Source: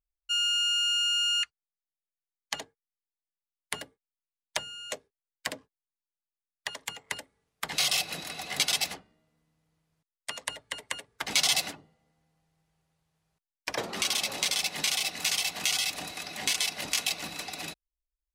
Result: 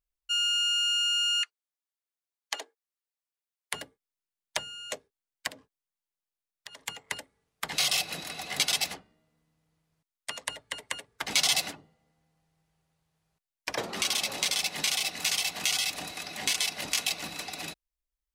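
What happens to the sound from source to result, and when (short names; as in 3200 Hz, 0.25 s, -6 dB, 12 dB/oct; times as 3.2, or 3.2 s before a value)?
1.39–3.74 steep high-pass 320 Hz
5.47–6.81 compressor 10:1, threshold -41 dBFS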